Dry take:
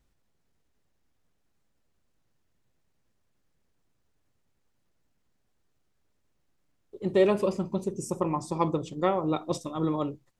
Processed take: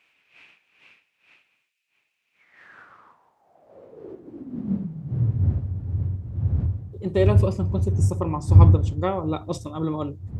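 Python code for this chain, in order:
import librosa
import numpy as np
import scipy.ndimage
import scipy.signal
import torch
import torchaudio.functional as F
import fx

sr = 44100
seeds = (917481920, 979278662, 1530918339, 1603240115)

y = fx.dmg_wind(x, sr, seeds[0], corner_hz=91.0, level_db=-28.0)
y = fx.filter_sweep_highpass(y, sr, from_hz=2500.0, to_hz=92.0, start_s=2.31, end_s=5.49, q=7.8)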